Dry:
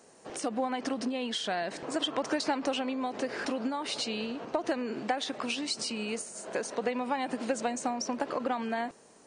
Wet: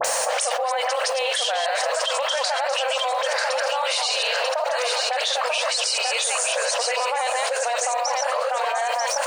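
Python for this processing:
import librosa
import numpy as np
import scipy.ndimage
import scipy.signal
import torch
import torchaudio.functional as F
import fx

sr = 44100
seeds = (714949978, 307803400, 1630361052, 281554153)

p1 = fx.reverse_delay(x, sr, ms=135, wet_db=-3)
p2 = scipy.signal.sosfilt(scipy.signal.butter(16, 500.0, 'highpass', fs=sr, output='sos'), p1)
p3 = fx.high_shelf(p2, sr, hz=4900.0, db=3.0)
p4 = fx.rider(p3, sr, range_db=4, speed_s=2.0)
p5 = p3 + F.gain(torch.from_numpy(p4), 2.0).numpy()
p6 = fx.quant_dither(p5, sr, seeds[0], bits=10, dither='none')
p7 = fx.dispersion(p6, sr, late='highs', ms=47.0, hz=2000.0)
p8 = p7 + fx.echo_single(p7, sr, ms=940, db=-7.5, dry=0)
p9 = fx.env_flatten(p8, sr, amount_pct=100)
y = F.gain(torch.from_numpy(p9), -5.5).numpy()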